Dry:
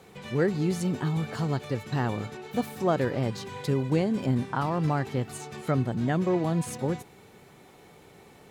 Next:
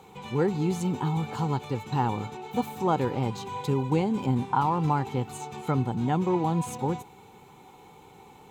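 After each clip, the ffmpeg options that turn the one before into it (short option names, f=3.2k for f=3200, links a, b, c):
-af "superequalizer=8b=0.501:9b=2.51:11b=0.447:14b=0.562:16b=0.631"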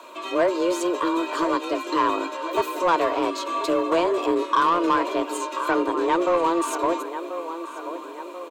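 -filter_complex "[0:a]afreqshift=170,asplit=2[a][b];[b]adelay=1036,lowpass=f=3.2k:p=1,volume=-12dB,asplit=2[c][d];[d]adelay=1036,lowpass=f=3.2k:p=1,volume=0.53,asplit=2[e][f];[f]adelay=1036,lowpass=f=3.2k:p=1,volume=0.53,asplit=2[g][h];[h]adelay=1036,lowpass=f=3.2k:p=1,volume=0.53,asplit=2[i][j];[j]adelay=1036,lowpass=f=3.2k:p=1,volume=0.53,asplit=2[k][l];[l]adelay=1036,lowpass=f=3.2k:p=1,volume=0.53[m];[a][c][e][g][i][k][m]amix=inputs=7:normalize=0,asplit=2[n][o];[o]highpass=f=720:p=1,volume=15dB,asoftclip=type=tanh:threshold=-9.5dB[p];[n][p]amix=inputs=2:normalize=0,lowpass=f=7.3k:p=1,volume=-6dB"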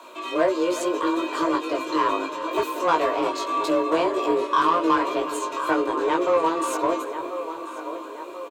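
-filter_complex "[0:a]highpass=48,asplit=2[a][b];[b]adelay=19,volume=-3.5dB[c];[a][c]amix=inputs=2:normalize=0,asplit=2[d][e];[e]adelay=363,lowpass=f=2k:p=1,volume=-13dB,asplit=2[f][g];[g]adelay=363,lowpass=f=2k:p=1,volume=0.55,asplit=2[h][i];[i]adelay=363,lowpass=f=2k:p=1,volume=0.55,asplit=2[j][k];[k]adelay=363,lowpass=f=2k:p=1,volume=0.55,asplit=2[l][m];[m]adelay=363,lowpass=f=2k:p=1,volume=0.55,asplit=2[n][o];[o]adelay=363,lowpass=f=2k:p=1,volume=0.55[p];[d][f][h][j][l][n][p]amix=inputs=7:normalize=0,volume=-2dB"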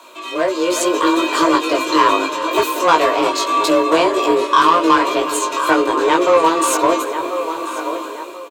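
-af "highshelf=f=2.2k:g=7.5,dynaudnorm=f=260:g=5:m=10dB"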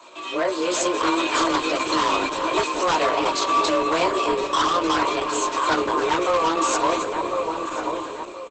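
-filter_complex "[0:a]acrossover=split=180|700|7300[a][b][c][d];[b]alimiter=limit=-16.5dB:level=0:latency=1:release=159[e];[c]aeval=exprs='0.237*(abs(mod(val(0)/0.237+3,4)-2)-1)':c=same[f];[a][e][f][d]amix=inputs=4:normalize=0,volume=-2.5dB" -ar 48000 -c:a libopus -b:a 12k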